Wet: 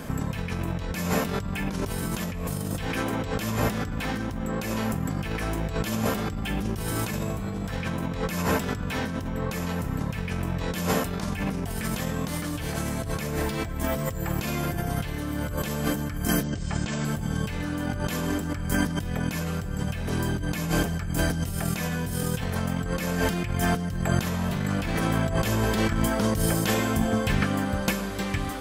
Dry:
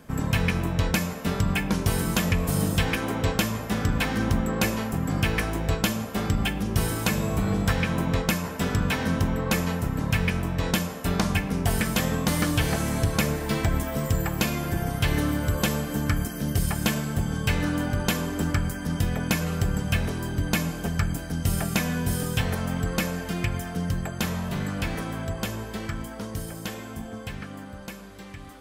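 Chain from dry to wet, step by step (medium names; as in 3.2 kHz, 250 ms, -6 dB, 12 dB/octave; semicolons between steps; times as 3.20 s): 16.43–17.05 s: steep low-pass 8.1 kHz 96 dB/octave; 20.42–22.07 s: hum notches 50/100/150/200/250 Hz; in parallel at +1 dB: peak limiter -19 dBFS, peak gain reduction 8.5 dB; on the sum: compressor with a negative ratio -28 dBFS, ratio -1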